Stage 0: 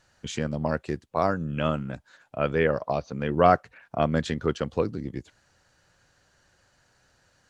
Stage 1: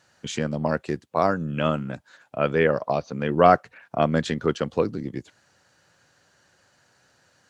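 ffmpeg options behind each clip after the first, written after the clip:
ffmpeg -i in.wav -af "highpass=120,volume=3dB" out.wav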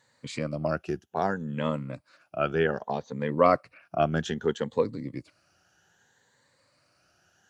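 ffmpeg -i in.wav -af "afftfilt=real='re*pow(10,11/40*sin(2*PI*(1*log(max(b,1)*sr/1024/100)/log(2)-(0.63)*(pts-256)/sr)))':imag='im*pow(10,11/40*sin(2*PI*(1*log(max(b,1)*sr/1024/100)/log(2)-(0.63)*(pts-256)/sr)))':win_size=1024:overlap=0.75,volume=-6dB" out.wav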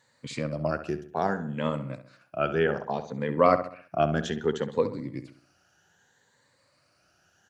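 ffmpeg -i in.wav -filter_complex "[0:a]asplit=2[link_01][link_02];[link_02]adelay=66,lowpass=frequency=2800:poles=1,volume=-10.5dB,asplit=2[link_03][link_04];[link_04]adelay=66,lowpass=frequency=2800:poles=1,volume=0.44,asplit=2[link_05][link_06];[link_06]adelay=66,lowpass=frequency=2800:poles=1,volume=0.44,asplit=2[link_07][link_08];[link_08]adelay=66,lowpass=frequency=2800:poles=1,volume=0.44,asplit=2[link_09][link_10];[link_10]adelay=66,lowpass=frequency=2800:poles=1,volume=0.44[link_11];[link_01][link_03][link_05][link_07][link_09][link_11]amix=inputs=6:normalize=0" out.wav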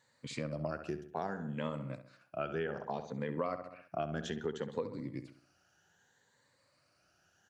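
ffmpeg -i in.wav -af "acompressor=threshold=-27dB:ratio=6,volume=-5.5dB" out.wav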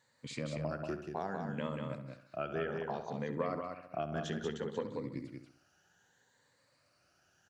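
ffmpeg -i in.wav -af "aecho=1:1:186:0.596,volume=-1dB" out.wav

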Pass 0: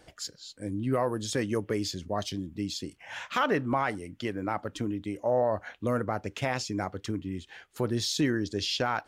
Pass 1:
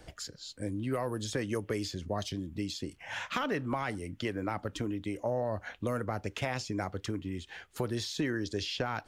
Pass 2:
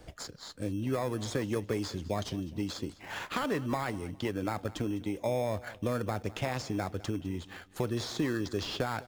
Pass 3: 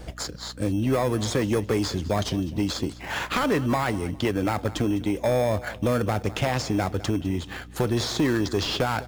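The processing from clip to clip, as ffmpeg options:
ffmpeg -i in.wav -filter_complex "[0:a]lowshelf=frequency=120:gain=9.5,acrossover=split=380|2400[link_01][link_02][link_03];[link_01]acompressor=threshold=-38dB:ratio=4[link_04];[link_02]acompressor=threshold=-35dB:ratio=4[link_05];[link_03]acompressor=threshold=-42dB:ratio=4[link_06];[link_04][link_05][link_06]amix=inputs=3:normalize=0,volume=1.5dB" out.wav
ffmpeg -i in.wav -filter_complex "[0:a]asplit=2[link_01][link_02];[link_02]acrusher=samples=15:mix=1:aa=0.000001,volume=-6dB[link_03];[link_01][link_03]amix=inputs=2:normalize=0,aecho=1:1:205|410|615:0.112|0.0348|0.0108,volume=-2dB" out.wav
ffmpeg -i in.wav -af "aeval=exprs='val(0)+0.00224*(sin(2*PI*60*n/s)+sin(2*PI*2*60*n/s)/2+sin(2*PI*3*60*n/s)/3+sin(2*PI*4*60*n/s)/4+sin(2*PI*5*60*n/s)/5)':channel_layout=same,aeval=exprs='0.158*sin(PI/2*2*val(0)/0.158)':channel_layout=same" out.wav

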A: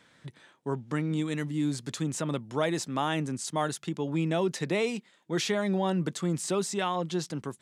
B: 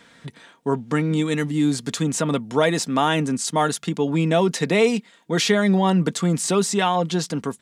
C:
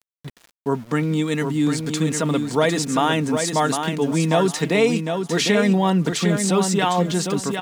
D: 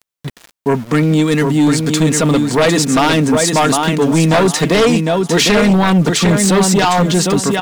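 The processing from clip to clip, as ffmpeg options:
ffmpeg -i in.wav -af "aecho=1:1:4.3:0.39,volume=9dB" out.wav
ffmpeg -i in.wav -filter_complex "[0:a]aeval=exprs='val(0)*gte(abs(val(0)),0.01)':channel_layout=same,asplit=2[link_01][link_02];[link_02]aecho=0:1:754|1508|2262:0.501|0.11|0.0243[link_03];[link_01][link_03]amix=inputs=2:normalize=0" out.wav
ffmpeg -i in.wav -af "aeval=exprs='0.668*sin(PI/2*3.16*val(0)/0.668)':channel_layout=same,volume=-3.5dB" out.wav

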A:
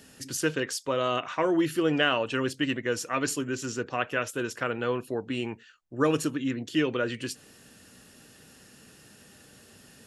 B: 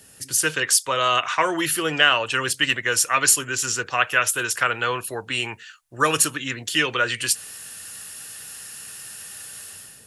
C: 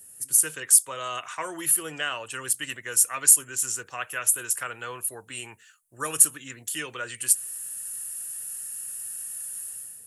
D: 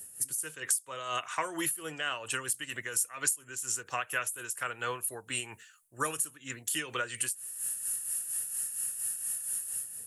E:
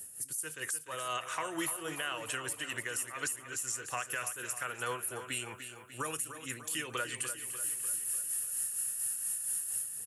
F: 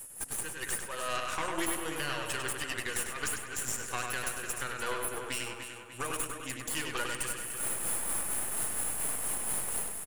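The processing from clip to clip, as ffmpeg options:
ffmpeg -i in.wav -filter_complex "[0:a]equalizer=frequency=100:width_type=o:width=0.67:gain=4,equalizer=frequency=250:width_type=o:width=0.67:gain=-7,equalizer=frequency=10000:width_type=o:width=0.67:gain=11,acrossover=split=510|840[link_01][link_02][link_03];[link_03]dynaudnorm=framelen=110:gausssize=7:maxgain=12.5dB[link_04];[link_01][link_02][link_04]amix=inputs=3:normalize=0" out.wav
ffmpeg -i in.wav -af "highshelf=frequency=6700:width_type=q:width=1.5:gain=13.5,volume=-12dB" out.wav
ffmpeg -i in.wav -af "acompressor=threshold=-31dB:ratio=6,tremolo=f=4.3:d=0.58,volume=4dB" out.wav
ffmpeg -i in.wav -filter_complex "[0:a]alimiter=level_in=0.5dB:limit=-24dB:level=0:latency=1:release=103,volume=-0.5dB,asplit=2[link_01][link_02];[link_02]aecho=0:1:297|594|891|1188|1485|1782:0.316|0.174|0.0957|0.0526|0.0289|0.0159[link_03];[link_01][link_03]amix=inputs=2:normalize=0" out.wav
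ffmpeg -i in.wav -filter_complex "[0:a]aeval=exprs='0.075*(cos(1*acos(clip(val(0)/0.075,-1,1)))-cos(1*PI/2))+0.0188*(cos(4*acos(clip(val(0)/0.075,-1,1)))-cos(4*PI/2))':channel_layout=same,asplit=2[link_01][link_02];[link_02]adelay=99,lowpass=frequency=5000:poles=1,volume=-3.5dB,asplit=2[link_03][link_04];[link_04]adelay=99,lowpass=frequency=5000:poles=1,volume=0.4,asplit=2[link_05][link_06];[link_06]adelay=99,lowpass=frequency=5000:poles=1,volume=0.4,asplit=2[link_07][link_08];[link_08]adelay=99,lowpass=frequency=5000:poles=1,volume=0.4,asplit=2[link_09][link_10];[link_10]adelay=99,lowpass=frequency=5000:poles=1,volume=0.4[link_11];[link_01][link_03][link_05][link_07][link_09][link_11]amix=inputs=6:normalize=0" out.wav

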